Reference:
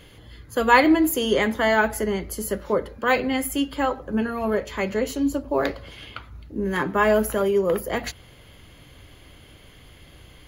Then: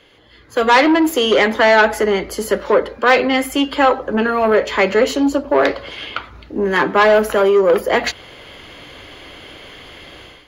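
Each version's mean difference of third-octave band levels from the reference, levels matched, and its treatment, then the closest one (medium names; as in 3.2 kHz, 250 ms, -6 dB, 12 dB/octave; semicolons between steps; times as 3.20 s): 5.0 dB: saturation -18 dBFS, distortion -11 dB; three-band isolator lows -14 dB, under 280 Hz, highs -15 dB, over 5.9 kHz; level rider gain up to 14 dB; trim +1 dB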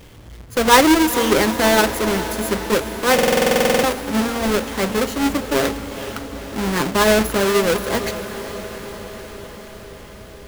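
10.0 dB: square wave that keeps the level; on a send: echo that smears into a reverb 463 ms, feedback 69%, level -12 dB; on the sum: buffer glitch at 3.14 s, samples 2048, times 14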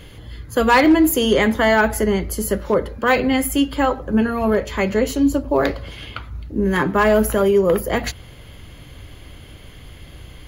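1.0 dB: bass shelf 160 Hz +6 dB; in parallel at -2 dB: peak limiter -13.5 dBFS, peak gain reduction 11 dB; on the sum: overload inside the chain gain 7.5 dB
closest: third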